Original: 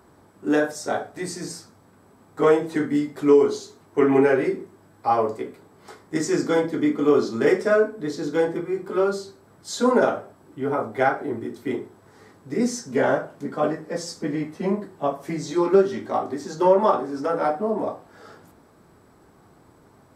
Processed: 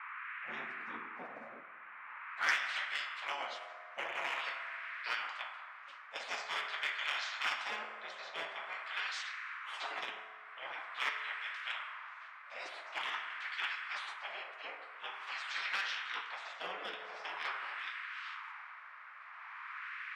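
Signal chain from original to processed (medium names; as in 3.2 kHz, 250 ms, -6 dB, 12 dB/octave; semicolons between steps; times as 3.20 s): frequency weighting A; spectral gate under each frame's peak -20 dB weak; band-pass sweep 250 Hz -> 2.8 kHz, 1.99–2.59 s; in parallel at -10.5 dB: small samples zeroed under -38.5 dBFS; on the sum: band noise 1.1–2.4 kHz -64 dBFS; wah-wah 0.46 Hz 520–1800 Hz, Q 3; sine folder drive 4 dB, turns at -18 dBFS; on a send at -10 dB: reverberation RT60 1.5 s, pre-delay 4 ms; on the sum: spectrum-flattening compressor 2:1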